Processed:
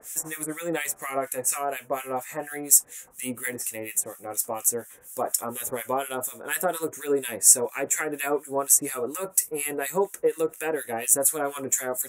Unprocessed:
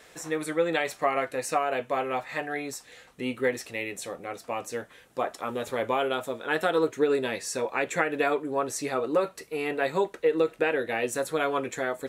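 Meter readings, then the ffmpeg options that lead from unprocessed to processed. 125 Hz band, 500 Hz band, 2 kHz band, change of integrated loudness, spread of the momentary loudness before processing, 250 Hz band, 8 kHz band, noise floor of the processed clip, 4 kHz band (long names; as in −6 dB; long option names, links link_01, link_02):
−2.0 dB, −2.0 dB, −3.0 dB, +4.0 dB, 9 LU, −2.5 dB, +18.0 dB, −50 dBFS, −1.0 dB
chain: -filter_complex "[0:a]aexciter=amount=14.9:drive=7.5:freq=6500,acrossover=split=1400[link_01][link_02];[link_01]aeval=exprs='val(0)*(1-1/2+1/2*cos(2*PI*4.2*n/s))':channel_layout=same[link_03];[link_02]aeval=exprs='val(0)*(1-1/2-1/2*cos(2*PI*4.2*n/s))':channel_layout=same[link_04];[link_03][link_04]amix=inputs=2:normalize=0,adynamicequalizer=threshold=0.00501:dfrequency=3600:dqfactor=0.7:tfrequency=3600:tqfactor=0.7:attack=5:release=100:ratio=0.375:range=2.5:mode=cutabove:tftype=highshelf,volume=2.5dB"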